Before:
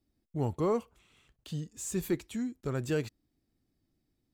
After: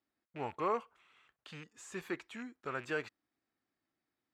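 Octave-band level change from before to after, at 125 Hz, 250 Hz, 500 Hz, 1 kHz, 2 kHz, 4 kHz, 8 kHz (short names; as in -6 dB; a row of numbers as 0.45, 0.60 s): -17.0, -11.5, -6.5, +2.5, +4.0, -4.0, -14.0 dB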